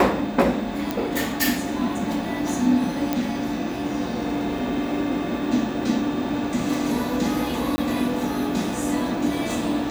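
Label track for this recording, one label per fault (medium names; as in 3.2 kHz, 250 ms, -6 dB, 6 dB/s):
0.910000	0.910000	pop
3.130000	3.130000	pop -9 dBFS
7.760000	7.780000	dropout 20 ms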